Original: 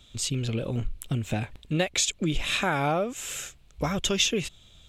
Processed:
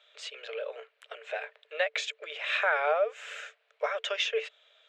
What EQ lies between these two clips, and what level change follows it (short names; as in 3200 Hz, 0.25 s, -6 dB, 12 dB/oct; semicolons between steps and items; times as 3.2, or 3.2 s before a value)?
rippled Chebyshev high-pass 430 Hz, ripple 9 dB; LPF 3100 Hz 12 dB/oct; +4.5 dB